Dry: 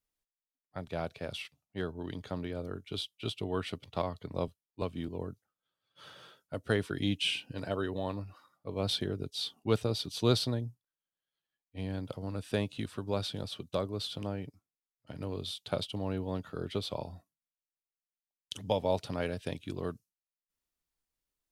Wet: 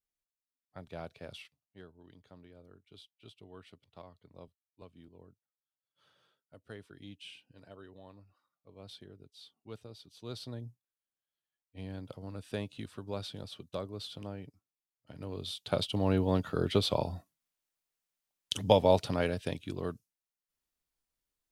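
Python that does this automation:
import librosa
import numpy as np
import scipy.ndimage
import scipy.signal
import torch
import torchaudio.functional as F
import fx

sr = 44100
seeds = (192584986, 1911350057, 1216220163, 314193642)

y = fx.gain(x, sr, db=fx.line((1.33, -7.0), (1.92, -18.0), (10.24, -18.0), (10.67, -5.5), (15.11, -5.5), (16.13, 7.0), (18.71, 7.0), (19.71, 0.0)))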